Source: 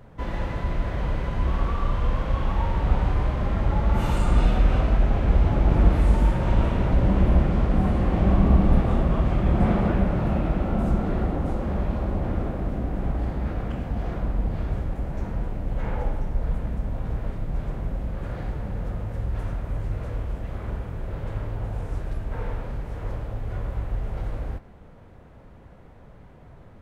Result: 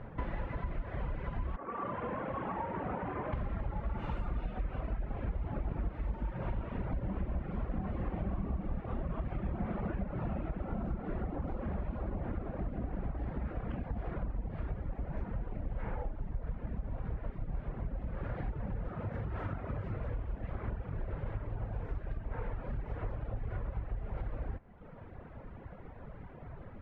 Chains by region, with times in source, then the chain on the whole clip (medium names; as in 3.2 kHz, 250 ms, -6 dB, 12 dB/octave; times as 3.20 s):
1.56–3.33 s: high-pass 220 Hz + distance through air 470 m
18.88–19.98 s: high-pass 84 Hz + peaking EQ 1.3 kHz +4.5 dB 0.22 oct + flutter echo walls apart 7.4 m, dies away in 0.3 s
whole clip: reverb removal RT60 0.99 s; Chebyshev low-pass 2.1 kHz, order 2; compression, threshold -37 dBFS; trim +3.5 dB